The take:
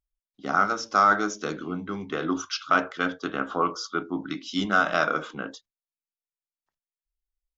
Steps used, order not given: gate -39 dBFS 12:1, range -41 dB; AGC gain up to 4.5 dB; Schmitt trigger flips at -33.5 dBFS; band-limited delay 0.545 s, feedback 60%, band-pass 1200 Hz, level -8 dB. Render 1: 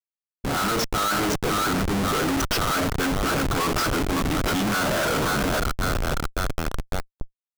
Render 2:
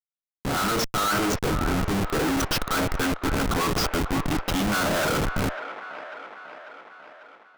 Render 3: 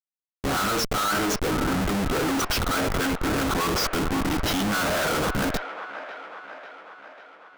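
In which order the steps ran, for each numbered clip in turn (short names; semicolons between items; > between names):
band-limited delay > Schmitt trigger > gate > AGC; gate > Schmitt trigger > band-limited delay > AGC; AGC > Schmitt trigger > gate > band-limited delay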